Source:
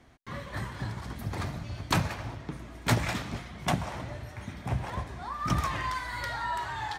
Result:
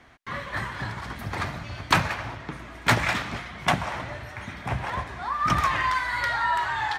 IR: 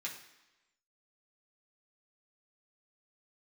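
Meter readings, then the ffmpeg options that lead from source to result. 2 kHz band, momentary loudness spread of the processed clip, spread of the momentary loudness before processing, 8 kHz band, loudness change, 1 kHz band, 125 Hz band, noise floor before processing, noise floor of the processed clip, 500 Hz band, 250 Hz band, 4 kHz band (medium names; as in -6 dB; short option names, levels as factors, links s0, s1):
+9.5 dB, 13 LU, 11 LU, +2.5 dB, +6.5 dB, +8.0 dB, +0.5 dB, -46 dBFS, -42 dBFS, +4.0 dB, +1.0 dB, +6.0 dB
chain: -af "equalizer=f=1700:w=0.45:g=10"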